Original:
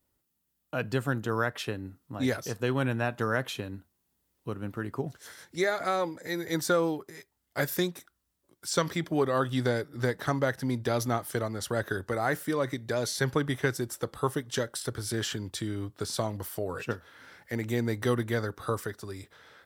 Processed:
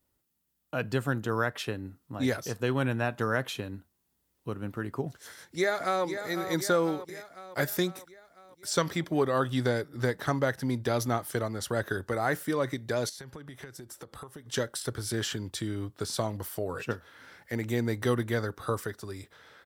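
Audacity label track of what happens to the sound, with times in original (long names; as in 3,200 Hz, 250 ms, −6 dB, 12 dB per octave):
5.240000	6.040000	delay throw 500 ms, feedback 60%, level −9 dB
13.090000	14.460000	downward compressor 16 to 1, threshold −40 dBFS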